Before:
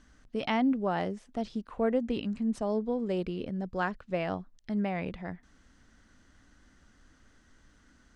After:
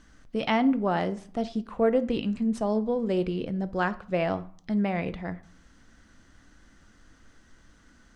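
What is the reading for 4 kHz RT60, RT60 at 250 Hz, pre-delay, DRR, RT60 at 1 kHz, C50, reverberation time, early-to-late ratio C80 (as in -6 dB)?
0.35 s, 0.55 s, 6 ms, 11.5 dB, 0.55 s, 17.5 dB, 0.50 s, 21.0 dB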